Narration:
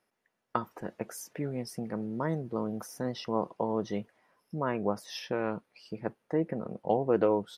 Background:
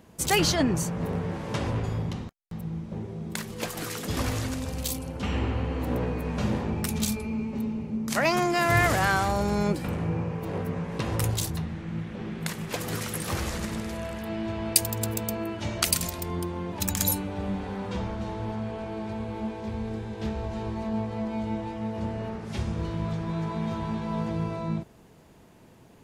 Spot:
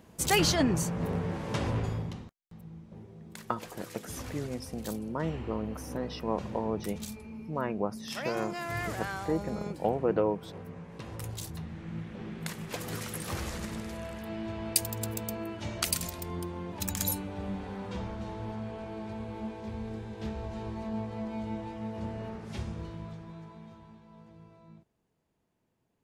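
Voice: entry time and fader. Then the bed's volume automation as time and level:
2.95 s, -1.5 dB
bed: 1.85 s -2 dB
2.46 s -13 dB
11.21 s -13 dB
11.86 s -5.5 dB
22.54 s -5.5 dB
24.05 s -24 dB

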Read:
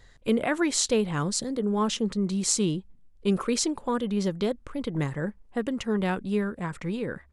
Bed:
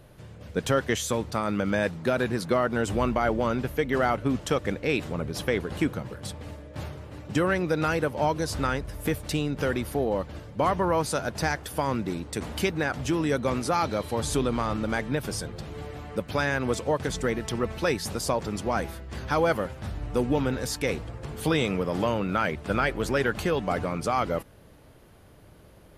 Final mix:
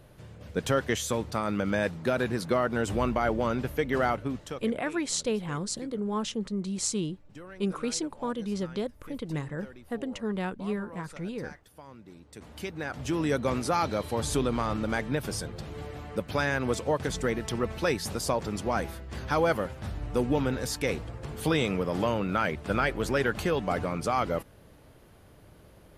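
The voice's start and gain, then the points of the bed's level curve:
4.35 s, -5.0 dB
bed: 4.09 s -2 dB
4.95 s -21.5 dB
11.95 s -21.5 dB
13.24 s -1.5 dB

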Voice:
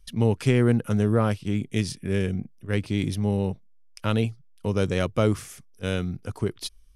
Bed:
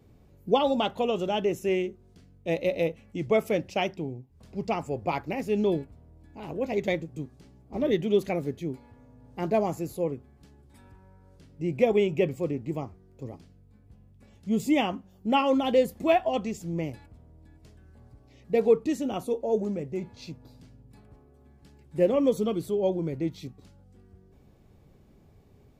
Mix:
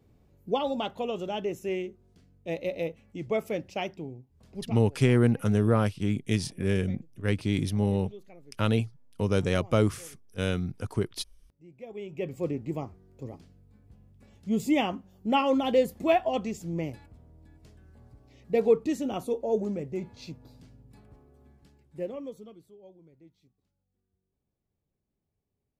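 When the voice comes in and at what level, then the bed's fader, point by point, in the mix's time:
4.55 s, -1.5 dB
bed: 4.6 s -5 dB
4.85 s -23 dB
11.8 s -23 dB
12.44 s -1 dB
21.49 s -1 dB
22.79 s -26.5 dB

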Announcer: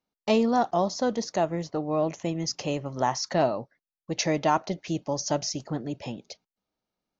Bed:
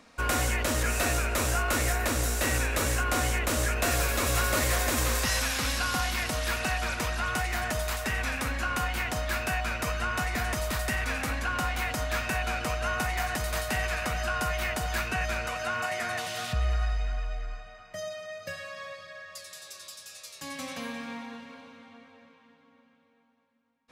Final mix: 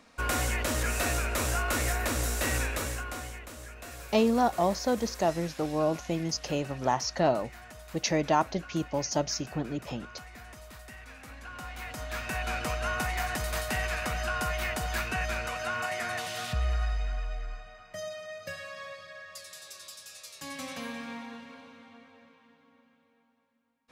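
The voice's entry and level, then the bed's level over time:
3.85 s, -1.5 dB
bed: 2.62 s -2 dB
3.54 s -17.5 dB
11.15 s -17.5 dB
12.54 s -1.5 dB

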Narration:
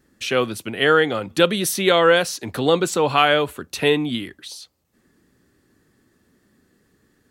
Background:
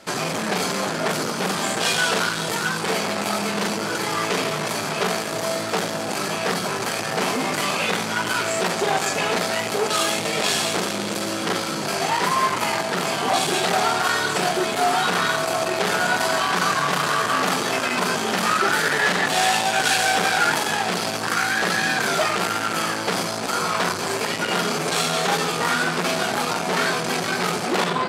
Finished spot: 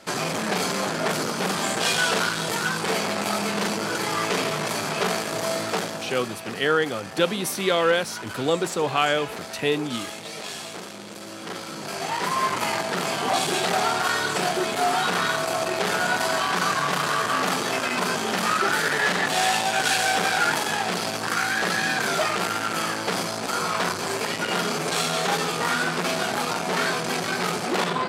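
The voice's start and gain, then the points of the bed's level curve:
5.80 s, -5.5 dB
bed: 5.69 s -1.5 dB
6.43 s -13 dB
11.16 s -13 dB
12.54 s -2.5 dB

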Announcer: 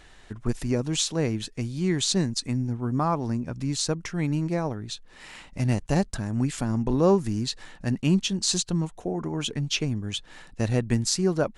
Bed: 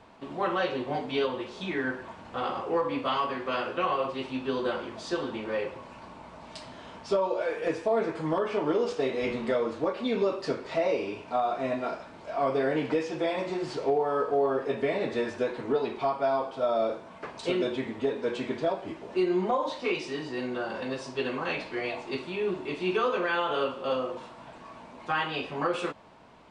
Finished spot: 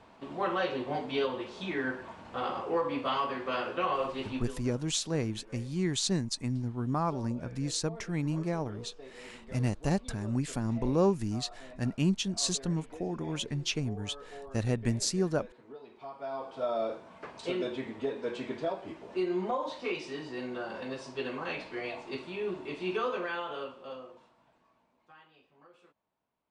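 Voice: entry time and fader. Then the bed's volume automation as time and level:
3.95 s, -5.5 dB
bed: 4.36 s -2.5 dB
4.61 s -21 dB
15.86 s -21 dB
16.59 s -5 dB
23.11 s -5 dB
25.39 s -31 dB

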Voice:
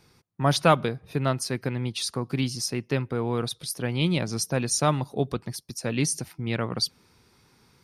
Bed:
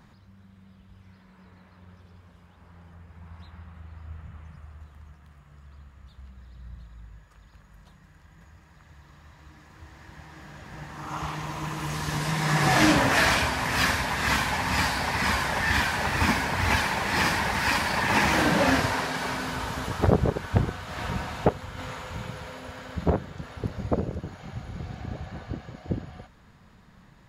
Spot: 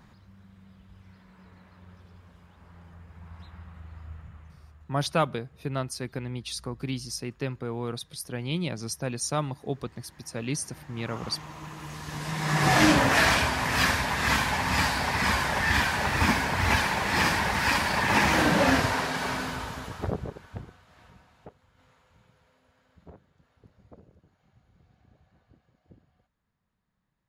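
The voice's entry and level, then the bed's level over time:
4.50 s, -5.5 dB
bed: 4 s -0.5 dB
4.86 s -8.5 dB
12.04 s -8.5 dB
12.68 s 0 dB
19.39 s 0 dB
21.24 s -26 dB

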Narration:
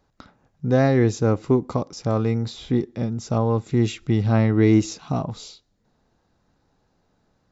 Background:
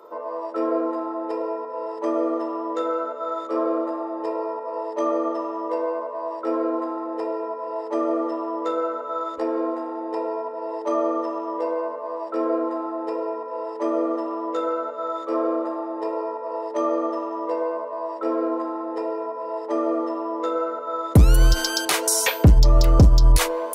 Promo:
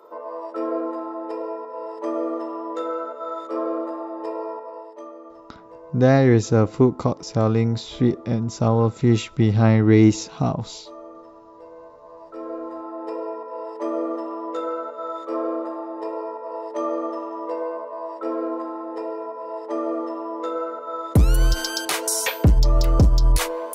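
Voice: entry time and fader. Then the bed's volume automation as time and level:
5.30 s, +2.5 dB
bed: 4.56 s -2.5 dB
5.14 s -18 dB
11.69 s -18 dB
13.13 s -2.5 dB

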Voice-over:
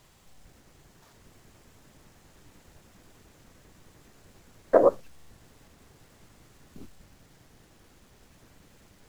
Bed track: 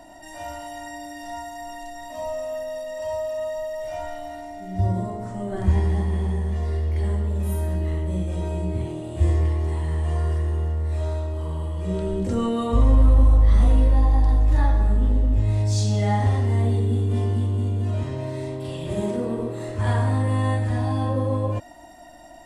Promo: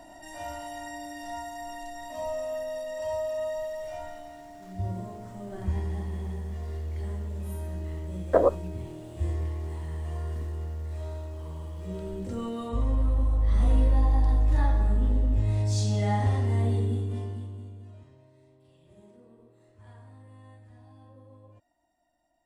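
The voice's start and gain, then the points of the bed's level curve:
3.60 s, -2.0 dB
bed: 3.55 s -3 dB
4.32 s -10 dB
13.33 s -10 dB
13.75 s -4.5 dB
16.83 s -4.5 dB
18.3 s -29 dB

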